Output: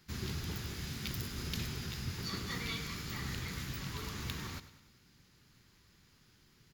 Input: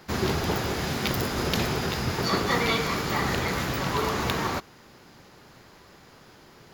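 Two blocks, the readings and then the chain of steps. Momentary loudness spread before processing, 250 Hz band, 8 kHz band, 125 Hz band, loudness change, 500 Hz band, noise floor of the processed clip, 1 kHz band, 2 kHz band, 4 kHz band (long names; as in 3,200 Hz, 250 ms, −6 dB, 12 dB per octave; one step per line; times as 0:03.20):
4 LU, −14.0 dB, −10.0 dB, −9.5 dB, −13.0 dB, −21.5 dB, −66 dBFS, −21.0 dB, −14.5 dB, −11.0 dB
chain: guitar amp tone stack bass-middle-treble 6-0-2
on a send: repeating echo 99 ms, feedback 54%, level −14.5 dB
on the sum: level +4.5 dB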